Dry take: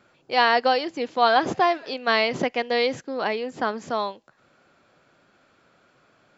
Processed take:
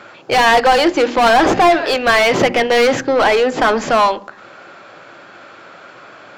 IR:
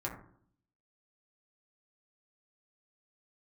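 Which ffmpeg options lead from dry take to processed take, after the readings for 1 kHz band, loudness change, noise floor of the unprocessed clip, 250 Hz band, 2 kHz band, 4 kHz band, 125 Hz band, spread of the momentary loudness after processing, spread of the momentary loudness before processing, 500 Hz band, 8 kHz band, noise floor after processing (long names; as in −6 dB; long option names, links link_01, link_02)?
+9.0 dB, +10.0 dB, −62 dBFS, +12.0 dB, +10.0 dB, +8.5 dB, +12.0 dB, 4 LU, 9 LU, +11.0 dB, can't be measured, −41 dBFS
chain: -filter_complex "[0:a]bandreject=frequency=120.5:width_type=h:width=4,bandreject=frequency=241:width_type=h:width=4,bandreject=frequency=361.5:width_type=h:width=4,asplit=2[link_01][link_02];[link_02]highpass=frequency=720:poles=1,volume=30dB,asoftclip=type=tanh:threshold=-4.5dB[link_03];[link_01][link_03]amix=inputs=2:normalize=0,lowpass=frequency=2400:poles=1,volume=-6dB,asplit=2[link_04][link_05];[1:a]atrim=start_sample=2205,lowshelf=frequency=410:gain=8[link_06];[link_05][link_06]afir=irnorm=-1:irlink=0,volume=-16dB[link_07];[link_04][link_07]amix=inputs=2:normalize=0"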